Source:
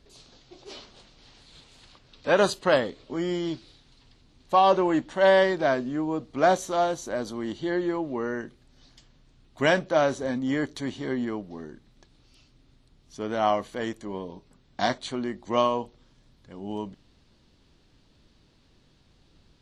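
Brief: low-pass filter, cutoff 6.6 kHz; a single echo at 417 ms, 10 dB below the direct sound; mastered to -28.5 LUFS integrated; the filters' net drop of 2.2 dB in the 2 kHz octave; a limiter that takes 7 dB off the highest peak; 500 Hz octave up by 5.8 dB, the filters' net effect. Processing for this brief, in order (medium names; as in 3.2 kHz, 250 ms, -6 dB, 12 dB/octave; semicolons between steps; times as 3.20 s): low-pass 6.6 kHz; peaking EQ 500 Hz +7.5 dB; peaking EQ 2 kHz -3.5 dB; peak limiter -11 dBFS; delay 417 ms -10 dB; trim -4.5 dB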